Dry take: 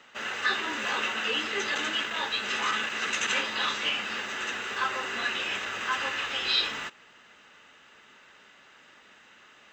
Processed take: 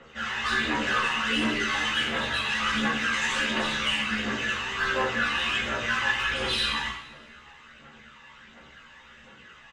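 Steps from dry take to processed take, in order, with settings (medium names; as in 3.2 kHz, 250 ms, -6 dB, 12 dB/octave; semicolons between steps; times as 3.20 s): tone controls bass +6 dB, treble -6 dB; saturation -25.5 dBFS, distortion -14 dB; resampled via 22.05 kHz; phaser 1.4 Hz, delay 1.2 ms, feedback 69%; two-slope reverb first 0.65 s, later 1.9 s, from -18 dB, DRR -4.5 dB; chorus voices 4, 0.25 Hz, delay 15 ms, depth 2 ms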